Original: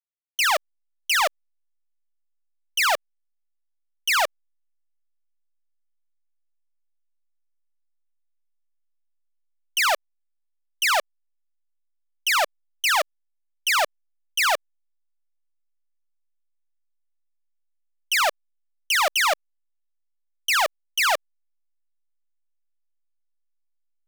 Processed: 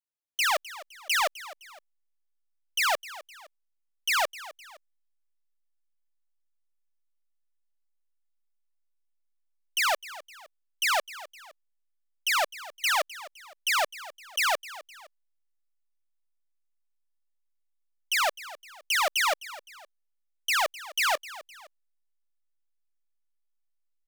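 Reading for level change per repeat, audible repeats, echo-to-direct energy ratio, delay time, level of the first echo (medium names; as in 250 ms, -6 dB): -7.5 dB, 2, -16.5 dB, 257 ms, -17.0 dB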